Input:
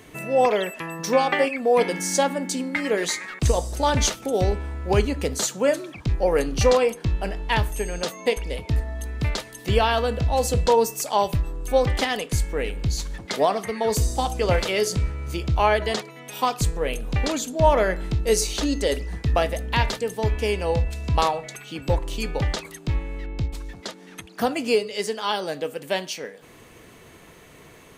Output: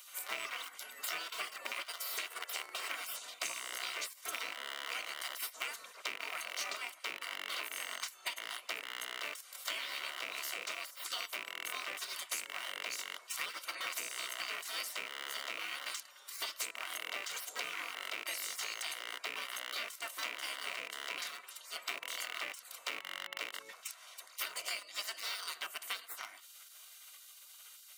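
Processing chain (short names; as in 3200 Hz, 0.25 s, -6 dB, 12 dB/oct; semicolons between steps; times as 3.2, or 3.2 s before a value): rattling part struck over -29 dBFS, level -16 dBFS; high shelf 8000 Hz +12 dB; in parallel at -10 dB: bit-crush 4-bit; on the sum: high shelf 3300 Hz -6.5 dB; spectral gate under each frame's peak -20 dB weak; compressor 12:1, threshold -39 dBFS, peak gain reduction 18 dB; HPF 640 Hz 12 dB/oct; notch comb 850 Hz; gain +4.5 dB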